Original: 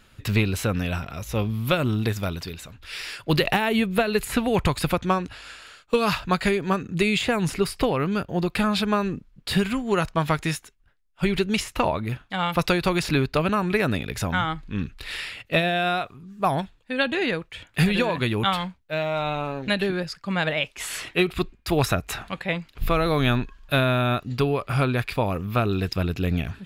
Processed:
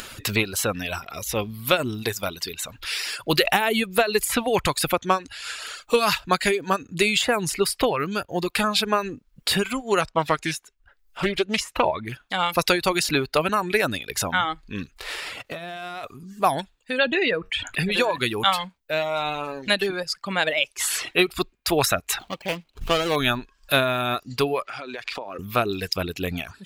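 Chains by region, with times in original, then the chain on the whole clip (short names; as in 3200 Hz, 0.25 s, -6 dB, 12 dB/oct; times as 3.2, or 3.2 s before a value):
10.01–12.14 high shelf 5800 Hz -9.5 dB + Doppler distortion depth 0.25 ms
14.96–16.03 spectral whitening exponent 0.6 + LPF 1700 Hz 6 dB/oct + compressor 20:1, threshold -34 dBFS
16.98–17.92 formant sharpening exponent 1.5 + resonator 93 Hz, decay 0.19 s, mix 40% + fast leveller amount 50%
22.19–23.16 median filter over 25 samples + bell 3000 Hz +9 dB 1.1 oct
24.65–25.39 G.711 law mismatch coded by mu + three-band isolator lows -17 dB, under 230 Hz, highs -23 dB, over 6500 Hz + compressor 10:1, threshold -32 dBFS
whole clip: upward compressor, threshold -27 dBFS; tone controls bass -10 dB, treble +6 dB; reverb removal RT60 0.78 s; gain +3 dB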